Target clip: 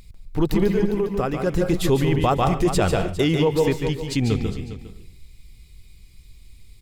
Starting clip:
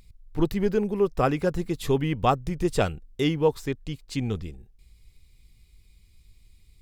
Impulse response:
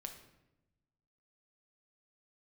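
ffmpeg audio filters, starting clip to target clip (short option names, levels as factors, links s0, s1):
-filter_complex "[0:a]asplit=3[s0][s1][s2];[s0]afade=t=out:st=0.7:d=0.02[s3];[s1]acompressor=threshold=0.0355:ratio=6,afade=t=in:st=0.7:d=0.02,afade=t=out:st=1.46:d=0.02[s4];[s2]afade=t=in:st=1.46:d=0.02[s5];[s3][s4][s5]amix=inputs=3:normalize=0,aecho=1:1:405:0.168,asplit=2[s6][s7];[1:a]atrim=start_sample=2205,afade=t=out:st=0.2:d=0.01,atrim=end_sample=9261,adelay=144[s8];[s7][s8]afir=irnorm=-1:irlink=0,volume=0.794[s9];[s6][s9]amix=inputs=2:normalize=0,alimiter=level_in=6.68:limit=0.891:release=50:level=0:latency=1,volume=0.355"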